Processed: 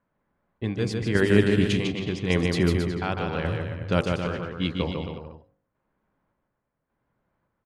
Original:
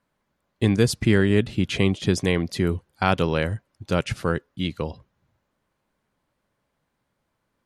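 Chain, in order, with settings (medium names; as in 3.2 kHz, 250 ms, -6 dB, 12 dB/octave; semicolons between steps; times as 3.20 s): square tremolo 0.87 Hz, depth 60%, duty 50%; de-hum 49.22 Hz, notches 28; on a send: bouncing-ball echo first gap 150 ms, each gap 0.8×, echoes 5; on the sum: level-controlled noise filter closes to 1.7 kHz, open at -17 dBFS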